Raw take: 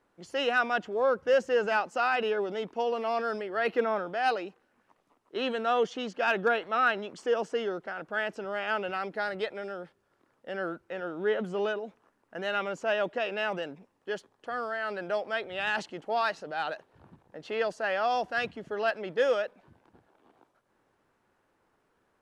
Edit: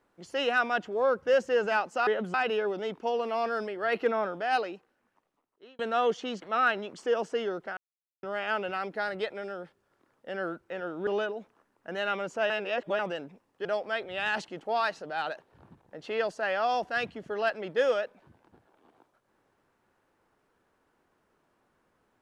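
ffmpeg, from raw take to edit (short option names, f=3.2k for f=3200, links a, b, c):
-filter_complex "[0:a]asplit=11[a][b][c][d][e][f][g][h][i][j][k];[a]atrim=end=2.072[l];[b]atrim=start=11.268:end=11.542[m];[c]atrim=start=2.068:end=5.52,asetpts=PTS-STARTPTS,afade=t=out:st=2.172:d=1.28[n];[d]atrim=start=5.52:end=6.152,asetpts=PTS-STARTPTS,afade=t=in:d=0.004:c=hsin[o];[e]atrim=start=6.618:end=7.97,asetpts=PTS-STARTPTS,afade=t=out:st=1.348:d=0.004:c=hsin[p];[f]atrim=start=7.97:end=8.43,asetpts=PTS-STARTPTS,volume=0[q];[g]atrim=start=8.43:end=11.272,asetpts=PTS-STARTPTS,afade=t=in:d=0.004:c=hsin[r];[h]atrim=start=11.538:end=12.972[s];[i]atrim=start=12.968:end=13.462,asetpts=PTS-STARTPTS,areverse[t];[j]atrim=start=13.458:end=14.122[u];[k]atrim=start=15.058[v];[l][m]acrossfade=d=0.004:c1=hsin:c2=hsin[w];[n][o]concat=n=2:v=0:a=1[x];[w][x]acrossfade=d=0.004:c1=hsin:c2=hsin[y];[p][q][r]concat=n=3:v=0:a=1[z];[y][z]acrossfade=d=0.004:c1=hsin:c2=hsin[aa];[aa][s]acrossfade=d=0.004:c1=hsin:c2=hsin[ab];[ab][t]acrossfade=d=0.004:c1=hsin:c2=hsin[ac];[ac][u]acrossfade=d=0.004:c1=hsin:c2=hsin[ad];[ad][v]acrossfade=d=0.004:c1=hsin:c2=hsin"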